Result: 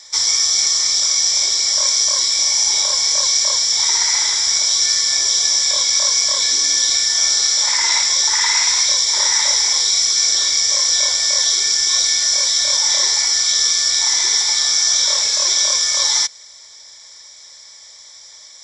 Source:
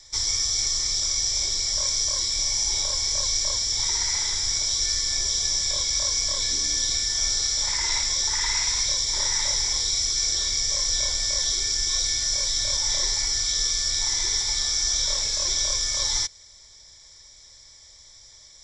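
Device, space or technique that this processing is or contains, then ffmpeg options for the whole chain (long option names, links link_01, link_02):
filter by subtraction: -filter_complex "[0:a]asplit=2[link_01][link_02];[link_02]lowpass=980,volume=-1[link_03];[link_01][link_03]amix=inputs=2:normalize=0,volume=8.5dB"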